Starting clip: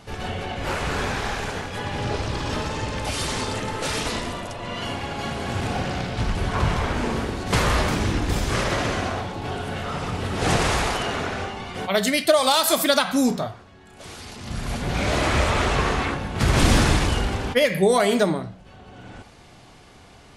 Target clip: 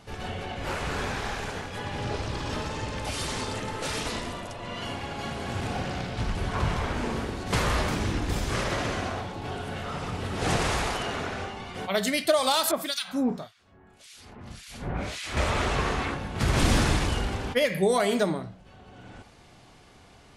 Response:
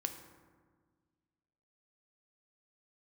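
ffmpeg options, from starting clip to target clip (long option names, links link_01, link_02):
-filter_complex "[0:a]asettb=1/sr,asplit=3[link_01][link_02][link_03];[link_01]atrim=end=12.714[link_04];[link_02]atrim=start=12.71:end=15.37,asetpts=PTS-STARTPTS,afade=type=in:duration=0.004:curve=qsin,afade=type=out:start_time=2.656:duration=0.004:curve=qsin,acrossover=split=2000[link_05][link_06];[link_05]aeval=exprs='val(0)*(1-1/2+1/2*cos(2*PI*1.8*n/s))':channel_layout=same[link_07];[link_06]aeval=exprs='val(0)*(1-1/2-1/2*cos(2*PI*1.8*n/s))':channel_layout=same[link_08];[link_07][link_08]amix=inputs=2:normalize=0[link_09];[link_03]atrim=start=15.366[link_10];[link_04][link_09]acrossfade=duration=0.004:curve1=hsin:curve2=qsin[link_11];[link_11][link_10]acrossfade=duration=0.004:curve1=qsin:curve2=hsin,volume=-5dB"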